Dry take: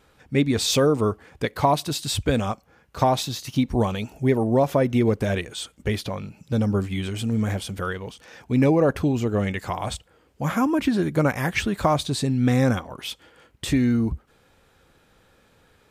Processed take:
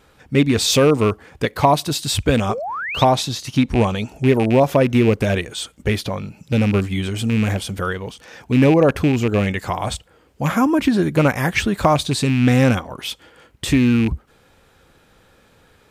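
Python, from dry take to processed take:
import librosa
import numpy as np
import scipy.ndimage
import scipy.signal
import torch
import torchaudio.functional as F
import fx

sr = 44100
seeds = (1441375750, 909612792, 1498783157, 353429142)

y = fx.rattle_buzz(x, sr, strikes_db=-20.0, level_db=-22.0)
y = fx.spec_paint(y, sr, seeds[0], shape='rise', start_s=2.49, length_s=0.55, low_hz=360.0, high_hz=4000.0, level_db=-31.0)
y = fx.lowpass(y, sr, hz=11000.0, slope=12, at=(3.12, 4.25))
y = F.gain(torch.from_numpy(y), 5.0).numpy()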